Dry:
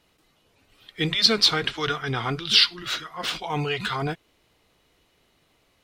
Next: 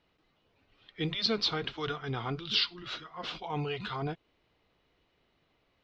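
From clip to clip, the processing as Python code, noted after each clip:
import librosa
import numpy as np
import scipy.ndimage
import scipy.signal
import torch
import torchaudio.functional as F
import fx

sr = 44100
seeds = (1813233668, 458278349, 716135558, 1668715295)

y = scipy.signal.sosfilt(scipy.signal.bessel(6, 3500.0, 'lowpass', norm='mag', fs=sr, output='sos'), x)
y = fx.dynamic_eq(y, sr, hz=1800.0, q=1.6, threshold_db=-43.0, ratio=4.0, max_db=-6)
y = y * 10.0 ** (-6.5 / 20.0)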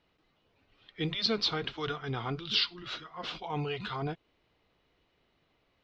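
y = x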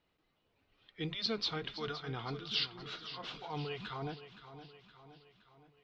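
y = fx.echo_feedback(x, sr, ms=518, feedback_pct=53, wet_db=-12.5)
y = y * 10.0 ** (-6.0 / 20.0)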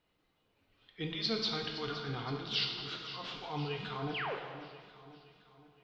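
y = fx.spec_paint(x, sr, seeds[0], shape='fall', start_s=4.14, length_s=0.21, low_hz=350.0, high_hz=3500.0, level_db=-38.0)
y = fx.rev_plate(y, sr, seeds[1], rt60_s=1.7, hf_ratio=0.9, predelay_ms=0, drr_db=2.5)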